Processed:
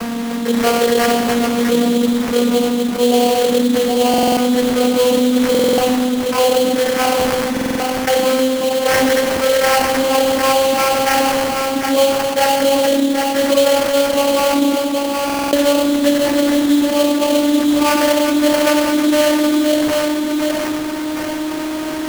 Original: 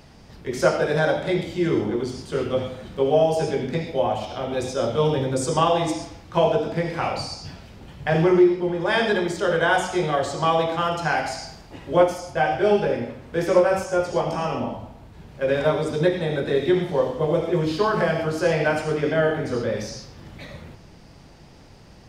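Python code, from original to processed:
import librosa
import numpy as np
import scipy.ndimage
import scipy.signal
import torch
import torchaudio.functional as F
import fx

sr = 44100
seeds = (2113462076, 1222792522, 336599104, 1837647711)

p1 = fx.vocoder_glide(x, sr, note=58, semitones=5)
p2 = fx.high_shelf(p1, sr, hz=3100.0, db=11.5)
p3 = p2 + fx.echo_single(p2, sr, ms=769, db=-12.5, dry=0)
p4 = fx.sample_hold(p3, sr, seeds[0], rate_hz=3700.0, jitter_pct=20)
p5 = fx.buffer_glitch(p4, sr, at_s=(4.09, 5.5, 7.52, 15.25), block=2048, repeats=5)
y = fx.env_flatten(p5, sr, amount_pct=70)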